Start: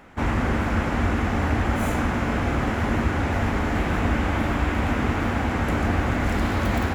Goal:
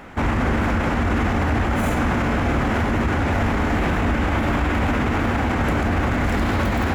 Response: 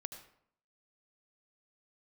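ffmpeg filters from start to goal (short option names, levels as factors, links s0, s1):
-filter_complex "[0:a]alimiter=limit=0.0891:level=0:latency=1:release=35,asplit=2[s0][s1];[1:a]atrim=start_sample=2205,lowpass=5600[s2];[s1][s2]afir=irnorm=-1:irlink=0,volume=0.282[s3];[s0][s3]amix=inputs=2:normalize=0,volume=2.24"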